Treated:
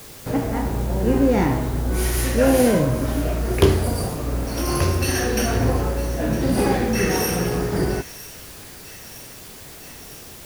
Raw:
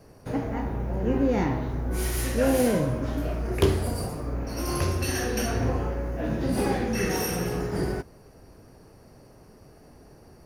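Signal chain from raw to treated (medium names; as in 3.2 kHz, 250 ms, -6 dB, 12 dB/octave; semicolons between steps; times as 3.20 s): feedback echo behind a high-pass 958 ms, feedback 71%, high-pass 2.1 kHz, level -14 dB; word length cut 8-bit, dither triangular; trim +6 dB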